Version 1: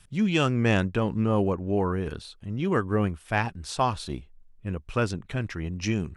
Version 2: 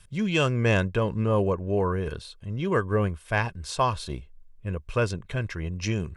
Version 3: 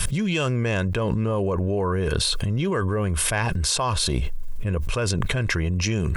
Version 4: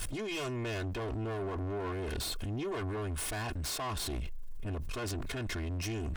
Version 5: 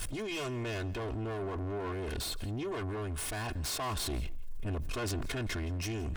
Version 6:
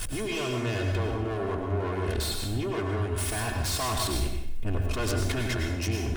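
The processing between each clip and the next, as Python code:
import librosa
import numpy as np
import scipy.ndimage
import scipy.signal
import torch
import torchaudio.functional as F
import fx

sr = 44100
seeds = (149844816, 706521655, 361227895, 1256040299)

y1 = x + 0.43 * np.pad(x, (int(1.9 * sr / 1000.0), 0))[:len(x)]
y2 = fx.high_shelf(y1, sr, hz=8000.0, db=8.0)
y2 = fx.env_flatten(y2, sr, amount_pct=100)
y2 = y2 * 10.0 ** (-3.5 / 20.0)
y3 = fx.lower_of_two(y2, sr, delay_ms=2.8)
y3 = 10.0 ** (-24.0 / 20.0) * np.tanh(y3 / 10.0 ** (-24.0 / 20.0))
y3 = y3 * 10.0 ** (-8.0 / 20.0)
y4 = fx.rider(y3, sr, range_db=10, speed_s=2.0)
y4 = y4 + 10.0 ** (-21.0 / 20.0) * np.pad(y4, (int(169 * sr / 1000.0), 0))[:len(y4)]
y5 = fx.rev_plate(y4, sr, seeds[0], rt60_s=0.74, hf_ratio=0.9, predelay_ms=85, drr_db=2.0)
y5 = y5 * 10.0 ** (4.5 / 20.0)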